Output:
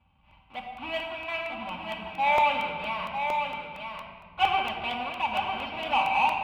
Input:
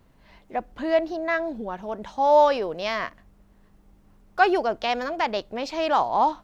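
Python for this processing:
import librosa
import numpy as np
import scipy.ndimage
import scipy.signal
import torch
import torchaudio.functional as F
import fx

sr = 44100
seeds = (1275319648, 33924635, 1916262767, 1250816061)

p1 = fx.halfwave_hold(x, sr)
p2 = fx.curve_eq(p1, sr, hz=(190.0, 350.0, 640.0, 970.0, 1800.0, 2600.0, 6200.0), db=(0, -19, -7, 7, -10, 13, -23))
p3 = np.clip(p2, -10.0 ** (-12.5 / 20.0), 10.0 ** (-12.5 / 20.0))
p4 = p2 + (p3 * librosa.db_to_amplitude(-9.5))
p5 = scipy.signal.sosfilt(scipy.signal.butter(4, 47.0, 'highpass', fs=sr, output='sos'), p4)
p6 = fx.high_shelf(p5, sr, hz=2700.0, db=-9.5)
p7 = fx.hum_notches(p6, sr, base_hz=50, count=4)
p8 = fx.comb_fb(p7, sr, f0_hz=780.0, decay_s=0.2, harmonics='all', damping=0.0, mix_pct=80)
p9 = p8 + fx.echo_single(p8, sr, ms=950, db=-6.0, dry=0)
p10 = fx.room_shoebox(p9, sr, seeds[0], volume_m3=3700.0, walls='mixed', distance_m=2.4)
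y = fx.buffer_crackle(p10, sr, first_s=0.31, period_s=0.23, block=64, kind='repeat')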